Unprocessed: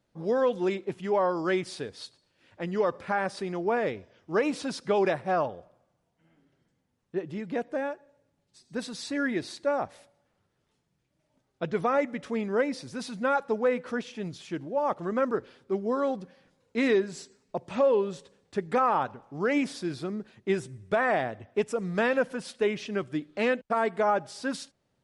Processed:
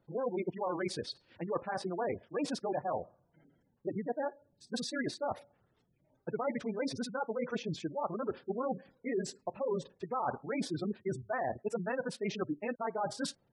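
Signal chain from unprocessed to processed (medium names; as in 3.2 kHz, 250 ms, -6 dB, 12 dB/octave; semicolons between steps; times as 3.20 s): dynamic bell 820 Hz, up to +5 dB, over -40 dBFS, Q 1.4; reverse; compression 10:1, threshold -33 dBFS, peak gain reduction 16.5 dB; reverse; spectral gate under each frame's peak -20 dB strong; granular stretch 0.54×, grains 54 ms; trim +3 dB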